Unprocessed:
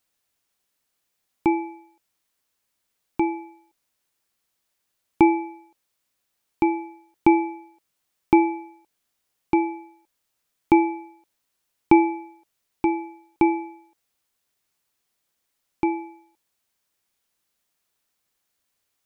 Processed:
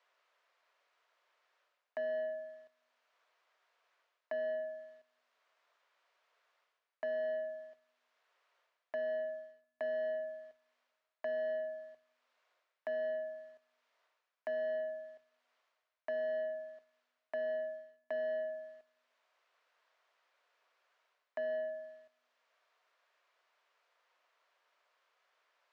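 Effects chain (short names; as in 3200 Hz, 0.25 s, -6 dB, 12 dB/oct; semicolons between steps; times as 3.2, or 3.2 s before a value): reverse; compressor 10:1, threshold -30 dBFS, peak gain reduction 21 dB; reverse; HPF 770 Hz 24 dB/oct; air absorption 98 m; notch 1100 Hz, Q 7.1; speed mistake 45 rpm record played at 33 rpm; on a send at -18.5 dB: reverb RT60 1.0 s, pre-delay 13 ms; on the sum: sample leveller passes 1; high shelf 2200 Hz -8.5 dB; three-band squash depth 40%; gain +2 dB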